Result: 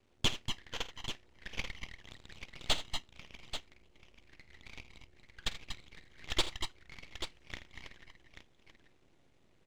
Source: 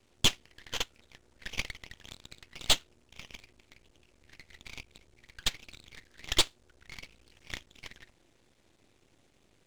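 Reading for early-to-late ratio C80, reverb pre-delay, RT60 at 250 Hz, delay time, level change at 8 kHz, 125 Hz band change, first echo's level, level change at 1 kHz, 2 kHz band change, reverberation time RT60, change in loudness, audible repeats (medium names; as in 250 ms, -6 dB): no reverb, no reverb, no reverb, 49 ms, -9.5 dB, -2.0 dB, -16.0 dB, -2.5 dB, -4.0 dB, no reverb, -8.0 dB, 4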